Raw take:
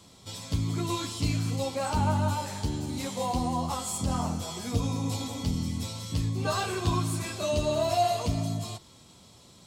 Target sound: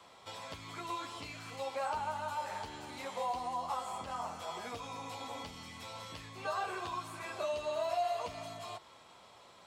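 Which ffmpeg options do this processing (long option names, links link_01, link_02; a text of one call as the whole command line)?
ffmpeg -i in.wav -filter_complex "[0:a]acrossover=split=1200|3700[link_01][link_02][link_03];[link_01]acompressor=threshold=-37dB:ratio=4[link_04];[link_02]acompressor=threshold=-50dB:ratio=4[link_05];[link_03]acompressor=threshold=-44dB:ratio=4[link_06];[link_04][link_05][link_06]amix=inputs=3:normalize=0,acrossover=split=520 2600:gain=0.0891 1 0.141[link_07][link_08][link_09];[link_07][link_08][link_09]amix=inputs=3:normalize=0,volume=5.5dB" out.wav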